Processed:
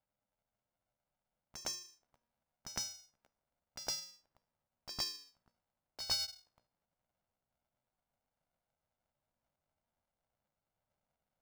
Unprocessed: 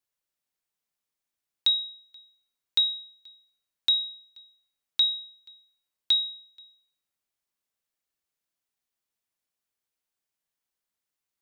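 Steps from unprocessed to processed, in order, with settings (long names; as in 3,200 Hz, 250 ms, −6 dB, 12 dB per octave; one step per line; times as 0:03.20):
pitch glide at a constant tempo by +8.5 semitones ending unshifted
tilt shelving filter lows +9.5 dB, about 1,200 Hz
low-pass that shuts in the quiet parts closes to 580 Hz, open at −36 dBFS
band-pass filter 190–2,500 Hz
low-shelf EQ 320 Hz +4.5 dB
mains-hum notches 60/120/180/240 Hz
tuned comb filter 600 Hz, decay 0.32 s, mix 60%
on a send: backwards echo 110 ms −10 dB
on the sum: ring modulator with a square carrier 360 Hz
level +14.5 dB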